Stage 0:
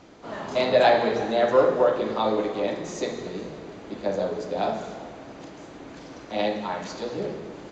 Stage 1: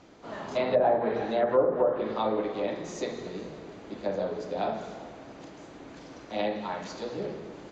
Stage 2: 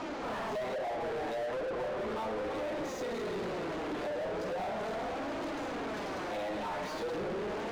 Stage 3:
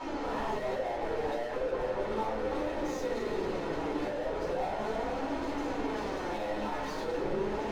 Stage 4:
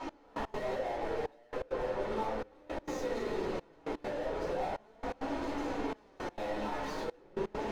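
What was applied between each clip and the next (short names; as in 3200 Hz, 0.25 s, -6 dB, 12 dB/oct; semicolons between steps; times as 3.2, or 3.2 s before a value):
treble ducked by the level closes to 870 Hz, closed at -15 dBFS; gain -4 dB
compressor 6:1, threshold -35 dBFS, peak gain reduction 16.5 dB; flange 0.37 Hz, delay 3.1 ms, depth 3.9 ms, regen +34%; overdrive pedal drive 38 dB, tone 1300 Hz, clips at -28.5 dBFS
shoebox room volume 120 m³, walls furnished, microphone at 4.3 m; gain -8.5 dB
step gate "x...x.xxxxxxx" 167 bpm -24 dB; gain -2 dB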